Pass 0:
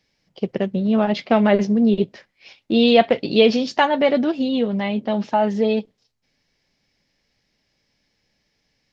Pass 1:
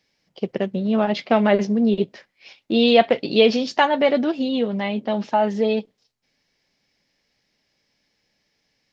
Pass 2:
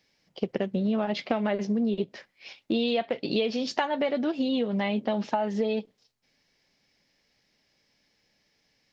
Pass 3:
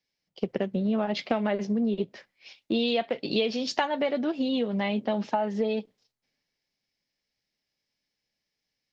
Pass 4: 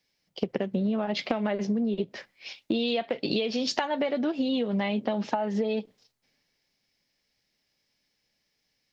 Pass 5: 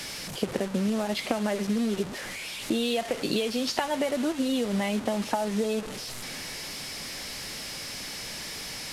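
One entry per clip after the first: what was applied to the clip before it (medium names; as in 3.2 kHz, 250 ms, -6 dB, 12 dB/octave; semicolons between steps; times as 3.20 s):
bass shelf 130 Hz -9 dB
compression 10:1, threshold -23 dBFS, peak gain reduction 15 dB
three bands expanded up and down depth 40%
compression, threshold -32 dBFS, peak gain reduction 11 dB; trim +7.5 dB
one-bit delta coder 64 kbps, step -31 dBFS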